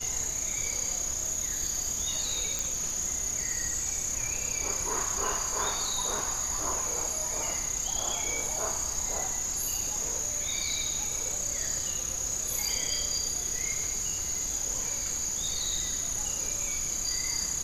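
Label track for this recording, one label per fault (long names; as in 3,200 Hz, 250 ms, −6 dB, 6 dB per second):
2.590000	2.590000	click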